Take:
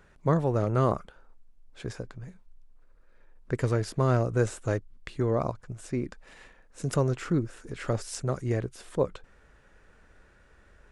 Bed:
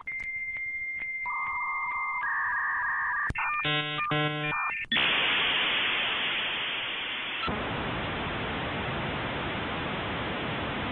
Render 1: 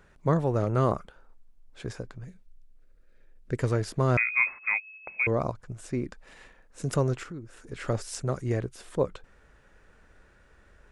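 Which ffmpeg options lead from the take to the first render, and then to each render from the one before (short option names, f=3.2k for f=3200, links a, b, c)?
-filter_complex "[0:a]asettb=1/sr,asplit=3[a][b][c];[a]atrim=end=2.254[d];[b]atrim=start=2.25:end=3.57,asetpts=PTS-STARTPTS,afade=t=in:d=0.004:c=qsin,afade=t=out:st=1.316:d=0.004:c=qsin,equalizer=f=1k:t=o:w=0.87:g=-13[e];[c]atrim=start=3.566[f];[d][e]acrossfade=d=0.004:c1=hsin:c2=qsin[g];[g][f]acrossfade=d=0.004:c1=qsin:c2=hsin,asettb=1/sr,asplit=3[h][i][j];[h]atrim=end=4.174[k];[i]atrim=start=4.17:end=5.27,asetpts=PTS-STARTPTS,afade=t=in:d=0.004:c=qsin,afade=t=out:st=1.096:d=0.004:c=qsin,lowpass=f=2.2k:t=q:w=0.5098,lowpass=f=2.2k:t=q:w=0.6013,lowpass=f=2.2k:t=q:w=0.9,lowpass=f=2.2k:t=q:w=2.563,afreqshift=-2600[l];[j]atrim=start=5.266[m];[k][l]acrossfade=d=0.004:c1=hsin:c2=qsin[n];[n][m]acrossfade=d=0.004:c1=qsin:c2=hsin,asettb=1/sr,asplit=3[o][p][q];[o]atrim=end=7.234[r];[p]atrim=start=7.23:end=7.72,asetpts=PTS-STARTPTS,afade=t=in:d=0.004:c=qsin,afade=t=out:st=0.486:d=0.004:c=qsin,acompressor=threshold=-47dB:ratio=2:attack=3.2:release=140:knee=1:detection=peak[s];[q]atrim=start=7.716[t];[r][s]acrossfade=d=0.004:c1=hsin:c2=qsin[u];[u][t]acrossfade=d=0.004:c1=qsin:c2=hsin"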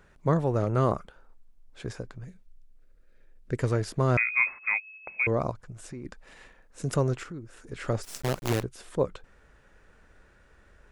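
-filter_complex "[0:a]asettb=1/sr,asplit=3[a][b][c];[a]atrim=end=5.604[d];[b]atrim=start=5.6:end=6.05,asetpts=PTS-STARTPTS,afade=t=in:d=0.004:c=qsin,afade=t=out:st=0.446:d=0.004:c=qsin,acompressor=threshold=-36dB:ratio=6:attack=3.2:release=140:knee=1:detection=peak[e];[c]atrim=start=6.046[f];[d][e]acrossfade=d=0.004:c1=hsin:c2=qsin[g];[g][f]acrossfade=d=0.004:c1=qsin:c2=hsin,asettb=1/sr,asplit=3[h][i][j];[h]atrim=end=8.034[k];[i]atrim=start=8.03:end=8.63,asetpts=PTS-STARTPTS,afade=t=in:d=0.004:c=qsin,afade=t=out:st=0.596:d=0.004:c=qsin,acrusher=bits=5:dc=4:mix=0:aa=0.000001[l];[j]atrim=start=8.626[m];[k][l]acrossfade=d=0.004:c1=hsin:c2=qsin[n];[n][m]acrossfade=d=0.004:c1=qsin:c2=hsin"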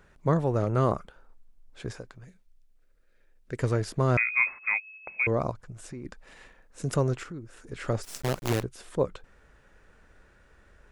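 -filter_complex "[0:a]asettb=1/sr,asplit=3[a][b][c];[a]atrim=end=1.994[d];[b]atrim=start=1.99:end=3.59,asetpts=PTS-STARTPTS,afade=t=in:d=0.004:c=qsin,afade=t=out:st=1.596:d=0.004:c=qsin,lowshelf=f=440:g=-7.5[e];[c]atrim=start=3.586[f];[d][e]acrossfade=d=0.004:c1=hsin:c2=qsin[g];[g][f]acrossfade=d=0.004:c1=qsin:c2=hsin"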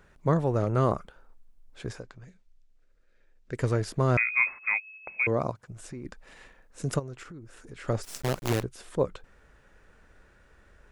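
-filter_complex "[0:a]asettb=1/sr,asplit=3[a][b][c];[a]atrim=end=2.004[d];[b]atrim=start=2:end=3.53,asetpts=PTS-STARTPTS,afade=t=in:d=0.004:c=qsin,afade=t=out:st=1.526:d=0.004:c=qsin,lowpass=f=7.9k:w=0.5412,lowpass=f=7.9k:w=1.3066[e];[c]atrim=start=3.526[f];[d][e]acrossfade=d=0.004:c1=hsin:c2=qsin[g];[g][f]acrossfade=d=0.004:c1=qsin:c2=hsin,asettb=1/sr,asplit=3[h][i][j];[h]atrim=end=5.204[k];[i]atrim=start=5.2:end=5.71,asetpts=PTS-STARTPTS,afade=t=in:d=0.004:c=qsin,afade=t=out:st=0.506:d=0.004:c=qsin,highpass=94[l];[j]atrim=start=5.706[m];[k][l]acrossfade=d=0.004:c1=hsin:c2=qsin[n];[n][m]acrossfade=d=0.004:c1=qsin:c2=hsin,asplit=3[o][p][q];[o]afade=t=out:st=6.98:d=0.02[r];[p]acompressor=threshold=-42dB:ratio=2.5:attack=3.2:release=140:knee=1:detection=peak,afade=t=in:st=6.98:d=0.02,afade=t=out:st=7.87:d=0.02[s];[q]afade=t=in:st=7.87:d=0.02[t];[r][s][t]amix=inputs=3:normalize=0"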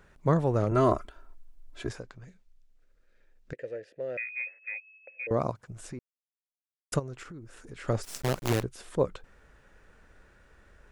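-filter_complex "[0:a]asettb=1/sr,asplit=3[a][b][c];[a]atrim=end=0.714[d];[b]atrim=start=0.71:end=1.89,asetpts=PTS-STARTPTS,afade=t=in:d=0.004:c=qsin,afade=t=out:st=1.176:d=0.004:c=qsin,aecho=1:1:3:0.89,atrim=end_sample=52038[e];[c]atrim=start=1.886[f];[d][e]acrossfade=d=0.004:c1=hsin:c2=qsin[g];[g][f]acrossfade=d=0.004:c1=qsin:c2=hsin,asettb=1/sr,asplit=3[h][i][j];[h]atrim=end=3.534[k];[i]atrim=start=3.53:end=5.31,asetpts=PTS-STARTPTS,afade=t=in:d=0.004:c=qsin,afade=t=out:st=1.776:d=0.004:c=qsin,asplit=3[l][m][n];[l]bandpass=f=530:t=q:w=8,volume=0dB[o];[m]bandpass=f=1.84k:t=q:w=8,volume=-6dB[p];[n]bandpass=f=2.48k:t=q:w=8,volume=-9dB[q];[o][p][q]amix=inputs=3:normalize=0[r];[j]atrim=start=5.306[s];[k][r]acrossfade=d=0.004:c1=hsin:c2=qsin[t];[t][s]acrossfade=d=0.004:c1=qsin:c2=hsin,asplit=3[u][v][w];[u]atrim=end=5.99,asetpts=PTS-STARTPTS,afade=t=out:st=5.986:d=0.004:c=hsin[x];[v]atrim=start=5.99:end=6.92,asetpts=PTS-STARTPTS,volume=0[y];[w]atrim=start=6.92,asetpts=PTS-STARTPTS,afade=t=in:d=0.004:c=hsin[z];[x][y][z]concat=n=3:v=0:a=1"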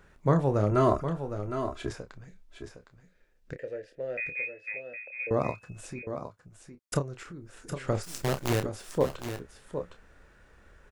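-filter_complex "[0:a]asplit=2[a][b];[b]adelay=29,volume=-9dB[c];[a][c]amix=inputs=2:normalize=0,aecho=1:1:761|773:0.355|0.106"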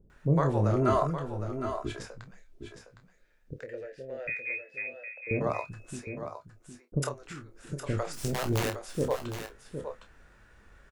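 -filter_complex "[0:a]asplit=2[a][b];[b]adelay=20,volume=-11dB[c];[a][c]amix=inputs=2:normalize=0,acrossover=split=470[d][e];[e]adelay=100[f];[d][f]amix=inputs=2:normalize=0"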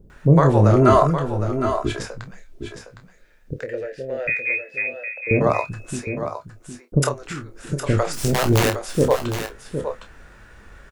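-af "volume=11.5dB,alimiter=limit=-3dB:level=0:latency=1"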